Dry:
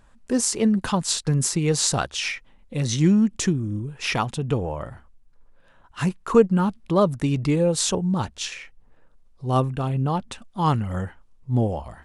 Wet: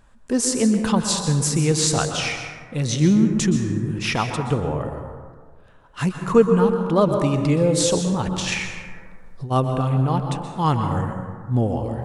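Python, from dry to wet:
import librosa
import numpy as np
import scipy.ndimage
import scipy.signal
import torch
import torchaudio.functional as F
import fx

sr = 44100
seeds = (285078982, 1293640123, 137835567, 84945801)

y = fx.over_compress(x, sr, threshold_db=-35.0, ratio=-1.0, at=(8.22, 9.5), fade=0.02)
y = fx.rev_plate(y, sr, seeds[0], rt60_s=1.7, hf_ratio=0.35, predelay_ms=110, drr_db=5.0)
y = fx.band_squash(y, sr, depth_pct=70, at=(3.55, 3.99))
y = F.gain(torch.from_numpy(y), 1.0).numpy()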